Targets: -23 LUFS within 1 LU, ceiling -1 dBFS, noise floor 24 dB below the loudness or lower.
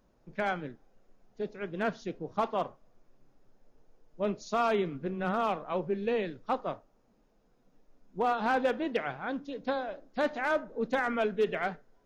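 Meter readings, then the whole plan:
clipped 0.3%; flat tops at -20.0 dBFS; loudness -32.5 LUFS; peak -20.0 dBFS; loudness target -23.0 LUFS
-> clip repair -20 dBFS; gain +9.5 dB

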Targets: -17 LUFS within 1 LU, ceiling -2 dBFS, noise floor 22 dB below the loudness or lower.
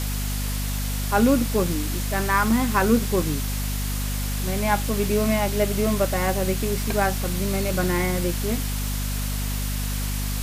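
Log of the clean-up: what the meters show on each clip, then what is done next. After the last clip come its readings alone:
hum 50 Hz; harmonics up to 250 Hz; hum level -24 dBFS; noise floor -26 dBFS; noise floor target -46 dBFS; loudness -24.0 LUFS; peak -5.5 dBFS; loudness target -17.0 LUFS
-> notches 50/100/150/200/250 Hz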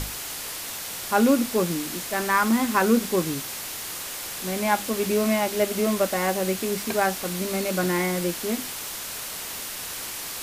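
hum none; noise floor -34 dBFS; noise floor target -47 dBFS
-> denoiser 13 dB, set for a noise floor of -34 dBFS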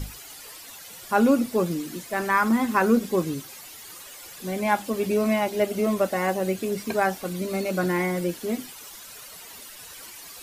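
noise floor -43 dBFS; noise floor target -47 dBFS
-> denoiser 6 dB, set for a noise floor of -43 dBFS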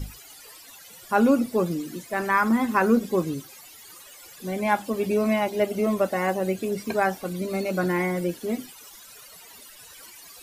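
noise floor -47 dBFS; loudness -25.0 LUFS; peak -6.5 dBFS; loudness target -17.0 LUFS
-> gain +8 dB; limiter -2 dBFS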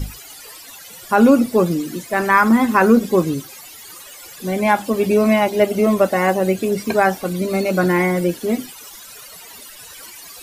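loudness -17.0 LUFS; peak -2.0 dBFS; noise floor -39 dBFS

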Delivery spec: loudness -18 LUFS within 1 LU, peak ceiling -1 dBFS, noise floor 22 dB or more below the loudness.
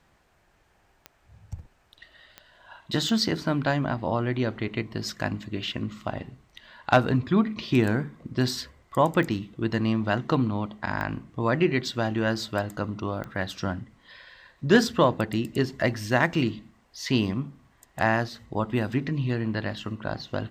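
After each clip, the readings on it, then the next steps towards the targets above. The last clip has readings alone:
clicks 6; loudness -27.0 LUFS; peak -8.0 dBFS; loudness target -18.0 LUFS
-> de-click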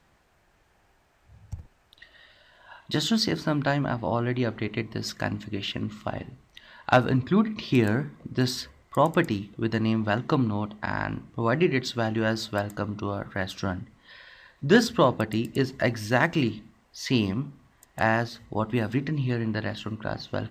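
clicks 0; loudness -27.0 LUFS; peak -7.0 dBFS; loudness target -18.0 LUFS
-> gain +9 dB; limiter -1 dBFS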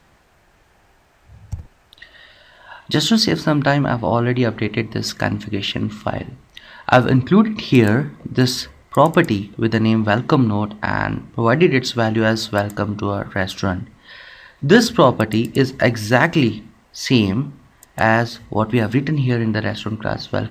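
loudness -18.0 LUFS; peak -1.0 dBFS; noise floor -55 dBFS

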